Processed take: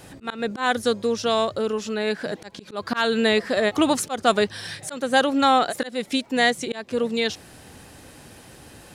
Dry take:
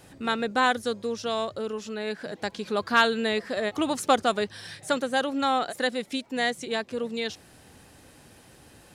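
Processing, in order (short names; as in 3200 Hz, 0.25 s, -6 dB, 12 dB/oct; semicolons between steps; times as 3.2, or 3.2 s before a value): auto swell 0.231 s; gain +7 dB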